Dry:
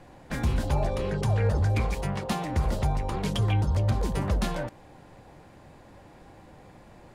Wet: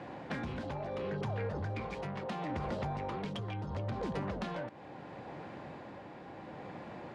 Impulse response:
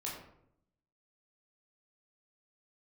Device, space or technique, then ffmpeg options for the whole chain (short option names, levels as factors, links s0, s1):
AM radio: -af "highpass=150,lowpass=3400,acompressor=threshold=0.0126:ratio=10,asoftclip=type=tanh:threshold=0.0168,tremolo=f=0.73:d=0.34,volume=2.24"